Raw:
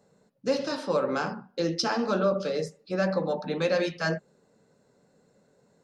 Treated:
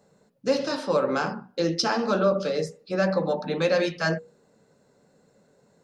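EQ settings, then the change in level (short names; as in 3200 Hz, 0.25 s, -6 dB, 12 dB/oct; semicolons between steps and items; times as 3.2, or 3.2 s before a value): notches 60/120/180/240/300/360/420/480 Hz; +3.0 dB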